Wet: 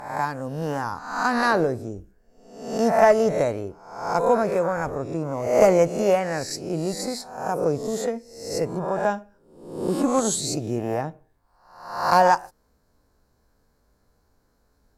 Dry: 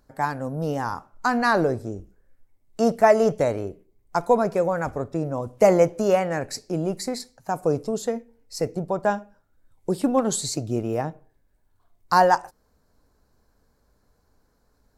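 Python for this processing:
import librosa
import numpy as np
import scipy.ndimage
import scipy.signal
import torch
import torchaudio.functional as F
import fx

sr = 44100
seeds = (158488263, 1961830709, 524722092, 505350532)

y = fx.spec_swells(x, sr, rise_s=0.73)
y = fx.cheby_harmonics(y, sr, harmonics=(2, 8), levels_db=(-17, -42), full_scale_db=-0.5)
y = F.gain(torch.from_numpy(y), -2.0).numpy()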